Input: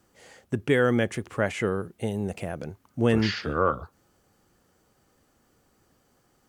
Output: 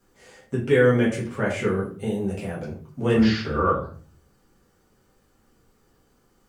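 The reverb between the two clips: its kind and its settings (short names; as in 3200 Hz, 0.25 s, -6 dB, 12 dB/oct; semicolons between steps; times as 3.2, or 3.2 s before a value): shoebox room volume 32 m³, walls mixed, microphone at 1.1 m; gain -5.5 dB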